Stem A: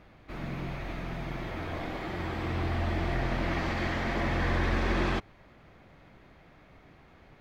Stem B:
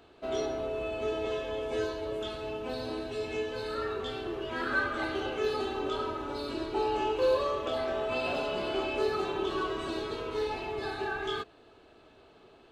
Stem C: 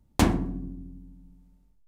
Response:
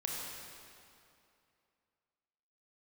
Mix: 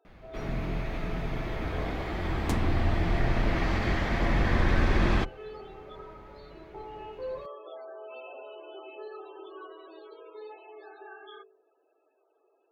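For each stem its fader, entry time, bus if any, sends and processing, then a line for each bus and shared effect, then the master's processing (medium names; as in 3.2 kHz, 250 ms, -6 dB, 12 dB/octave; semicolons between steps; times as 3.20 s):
+1.0 dB, 0.05 s, no send, octave divider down 2 oct, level +3 dB
-13.0 dB, 0.00 s, no send, resonant low shelf 280 Hz -13.5 dB, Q 1.5; loudest bins only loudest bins 32; de-hum 48.35 Hz, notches 12
-7.0 dB, 2.30 s, no send, compression 1.5:1, threshold -28 dBFS, peak gain reduction 5 dB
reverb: none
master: none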